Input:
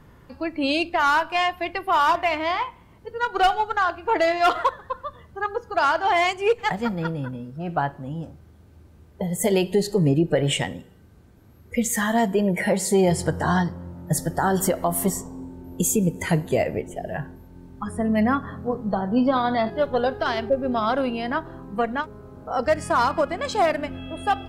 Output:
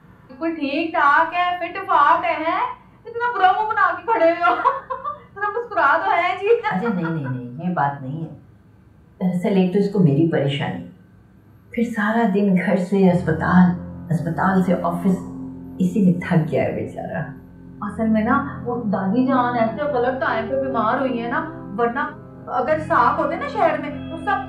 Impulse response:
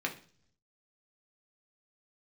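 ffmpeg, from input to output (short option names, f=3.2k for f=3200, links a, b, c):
-filter_complex "[0:a]acrossover=split=3400[a][b];[b]acompressor=threshold=-45dB:ratio=4:attack=1:release=60[c];[a][c]amix=inputs=2:normalize=0[d];[1:a]atrim=start_sample=2205,atrim=end_sample=3528,asetrate=28224,aresample=44100[e];[d][e]afir=irnorm=-1:irlink=0,volume=-4.5dB"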